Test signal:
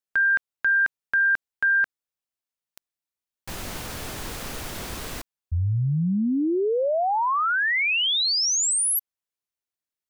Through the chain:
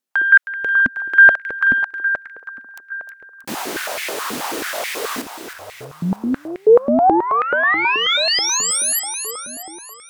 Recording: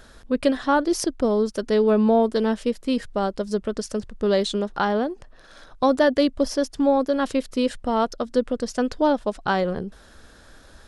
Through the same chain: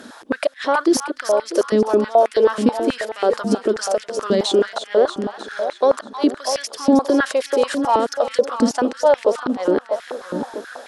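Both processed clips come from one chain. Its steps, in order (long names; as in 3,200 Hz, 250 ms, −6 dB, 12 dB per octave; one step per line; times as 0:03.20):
in parallel at −1 dB: compressor whose output falls as the input rises −25 dBFS, ratio −0.5
on the sum: gate with flip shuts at −7 dBFS, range −35 dB
on a send: echo with a time of its own for lows and highs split 1,200 Hz, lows 646 ms, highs 315 ms, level −9 dB
on the sum: harmonic generator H 2 −17 dB, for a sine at −1 dBFS
boost into a limiter +10.5 dB
high-pass on a step sequencer 9.3 Hz 250–2,100 Hz
level −11 dB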